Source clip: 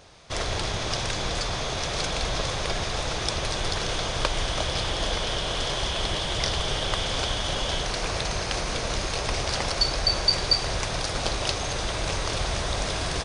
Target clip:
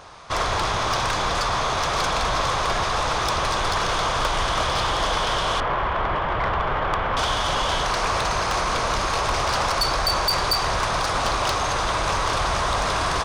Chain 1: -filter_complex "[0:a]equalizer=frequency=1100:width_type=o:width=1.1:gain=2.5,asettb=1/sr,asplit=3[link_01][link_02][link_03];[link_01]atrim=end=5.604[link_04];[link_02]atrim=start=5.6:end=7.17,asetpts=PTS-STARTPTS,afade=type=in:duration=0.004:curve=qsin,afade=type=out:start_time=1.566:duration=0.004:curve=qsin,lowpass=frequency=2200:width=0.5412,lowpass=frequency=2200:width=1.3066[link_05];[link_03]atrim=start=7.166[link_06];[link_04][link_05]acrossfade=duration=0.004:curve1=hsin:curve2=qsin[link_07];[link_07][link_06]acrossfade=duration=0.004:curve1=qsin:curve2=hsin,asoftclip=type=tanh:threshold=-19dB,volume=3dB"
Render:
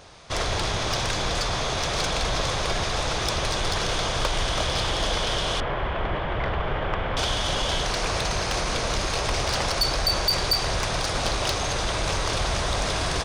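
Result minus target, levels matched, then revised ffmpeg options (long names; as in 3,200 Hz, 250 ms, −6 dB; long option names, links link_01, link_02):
1,000 Hz band −4.5 dB
-filter_complex "[0:a]equalizer=frequency=1100:width_type=o:width=1.1:gain=13,asettb=1/sr,asplit=3[link_01][link_02][link_03];[link_01]atrim=end=5.604[link_04];[link_02]atrim=start=5.6:end=7.17,asetpts=PTS-STARTPTS,afade=type=in:duration=0.004:curve=qsin,afade=type=out:start_time=1.566:duration=0.004:curve=qsin,lowpass=frequency=2200:width=0.5412,lowpass=frequency=2200:width=1.3066[link_05];[link_03]atrim=start=7.166[link_06];[link_04][link_05]acrossfade=duration=0.004:curve1=hsin:curve2=qsin[link_07];[link_07][link_06]acrossfade=duration=0.004:curve1=qsin:curve2=hsin,asoftclip=type=tanh:threshold=-19dB,volume=3dB"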